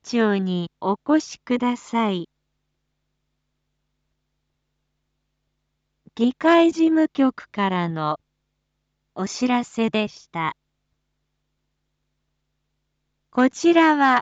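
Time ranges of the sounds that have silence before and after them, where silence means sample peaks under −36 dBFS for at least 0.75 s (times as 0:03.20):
0:06.08–0:08.16
0:09.16–0:10.52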